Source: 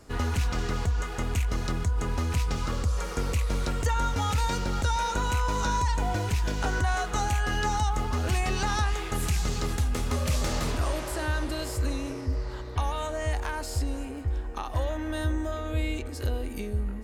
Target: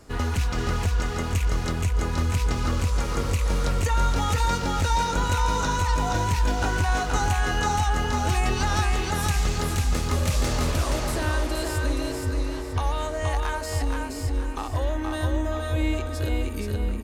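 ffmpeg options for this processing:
ffmpeg -i in.wav -af "aecho=1:1:474|948|1422|1896:0.668|0.227|0.0773|0.0263,volume=2dB" out.wav

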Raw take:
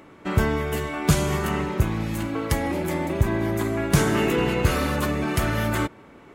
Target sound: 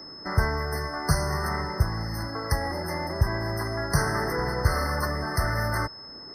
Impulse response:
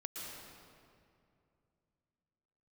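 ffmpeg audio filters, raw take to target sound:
-filter_complex "[0:a]acrossover=split=140|500|5200[link_01][link_02][link_03][link_04];[link_02]acompressor=threshold=-44dB:ratio=5[link_05];[link_01][link_05][link_03][link_04]amix=inputs=4:normalize=0,aeval=exprs='val(0)+0.00891*sin(2*PI*5200*n/s)':channel_layout=same,afftfilt=real='re*eq(mod(floor(b*sr/1024/2100),2),0)':imag='im*eq(mod(floor(b*sr/1024/2100),2),0)':win_size=1024:overlap=0.75"

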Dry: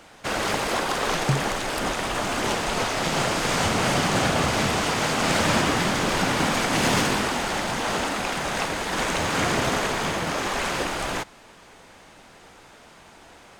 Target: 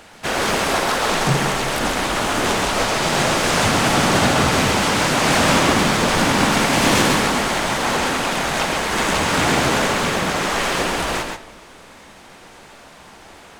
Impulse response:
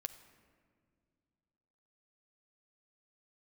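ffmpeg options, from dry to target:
-filter_complex "[0:a]asplit=2[link_01][link_02];[link_02]asetrate=52444,aresample=44100,atempo=0.840896,volume=-3dB[link_03];[link_01][link_03]amix=inputs=2:normalize=0,asplit=2[link_04][link_05];[1:a]atrim=start_sample=2205,asetrate=88200,aresample=44100,adelay=132[link_06];[link_05][link_06]afir=irnorm=-1:irlink=0,volume=4dB[link_07];[link_04][link_07]amix=inputs=2:normalize=0,volume=3dB"

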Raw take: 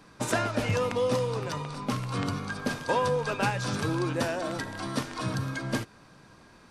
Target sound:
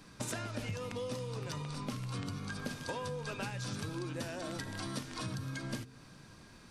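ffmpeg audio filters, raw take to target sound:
ffmpeg -i in.wav -af "equalizer=frequency=820:width_type=o:width=2.8:gain=-8,bandreject=frequency=64.81:width_type=h:width=4,bandreject=frequency=129.62:width_type=h:width=4,bandreject=frequency=194.43:width_type=h:width=4,bandreject=frequency=259.24:width_type=h:width=4,bandreject=frequency=324.05:width_type=h:width=4,bandreject=frequency=388.86:width_type=h:width=4,bandreject=frequency=453.67:width_type=h:width=4,acompressor=threshold=-39dB:ratio=6,volume=2.5dB" out.wav

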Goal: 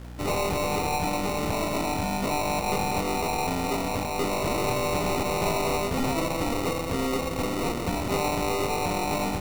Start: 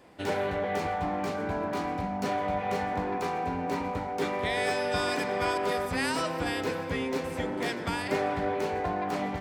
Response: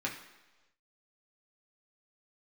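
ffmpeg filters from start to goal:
-af "aeval=exprs='val(0)+0.00631*(sin(2*PI*60*n/s)+sin(2*PI*2*60*n/s)/2+sin(2*PI*3*60*n/s)/3+sin(2*PI*4*60*n/s)/4+sin(2*PI*5*60*n/s)/5)':channel_layout=same,acrusher=samples=27:mix=1:aa=0.000001,aeval=exprs='0.141*(cos(1*acos(clip(val(0)/0.141,-1,1)))-cos(1*PI/2))+0.0224*(cos(5*acos(clip(val(0)/0.141,-1,1)))-cos(5*PI/2))+0.0126*(cos(8*acos(clip(val(0)/0.141,-1,1)))-cos(8*PI/2))':channel_layout=same"

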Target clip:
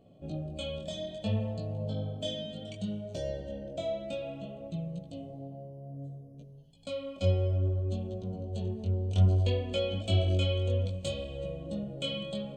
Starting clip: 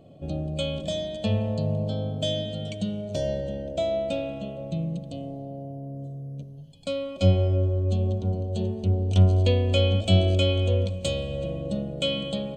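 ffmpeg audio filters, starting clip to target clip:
ffmpeg -i in.wav -af "flanger=delay=16.5:depth=7.3:speed=0.61,volume=-4.5dB" out.wav

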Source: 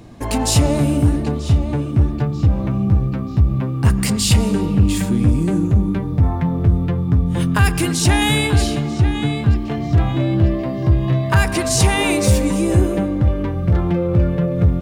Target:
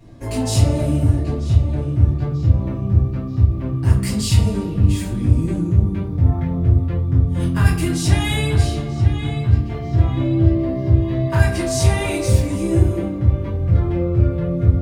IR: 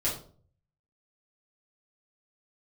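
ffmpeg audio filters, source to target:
-filter_complex "[1:a]atrim=start_sample=2205[link_01];[0:a][link_01]afir=irnorm=-1:irlink=0,volume=-12.5dB"

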